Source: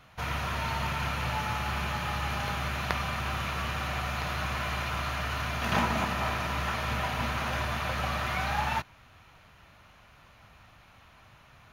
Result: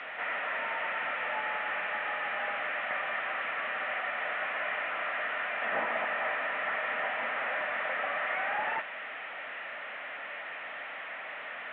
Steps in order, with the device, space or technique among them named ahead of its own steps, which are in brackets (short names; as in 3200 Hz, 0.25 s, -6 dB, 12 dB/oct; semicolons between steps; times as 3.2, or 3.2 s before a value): digital answering machine (BPF 340–3300 Hz; delta modulation 16 kbps, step -36 dBFS; speaker cabinet 360–4300 Hz, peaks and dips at 370 Hz -9 dB, 600 Hz +4 dB, 1000 Hz -6 dB, 1900 Hz +9 dB)